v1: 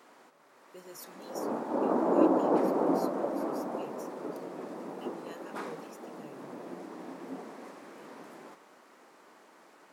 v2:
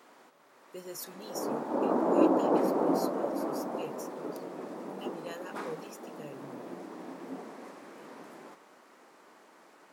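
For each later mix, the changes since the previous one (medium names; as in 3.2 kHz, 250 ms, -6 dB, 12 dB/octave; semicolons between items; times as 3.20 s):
speech +6.0 dB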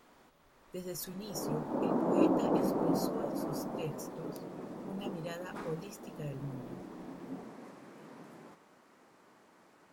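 background -5.5 dB; master: remove high-pass 290 Hz 12 dB/octave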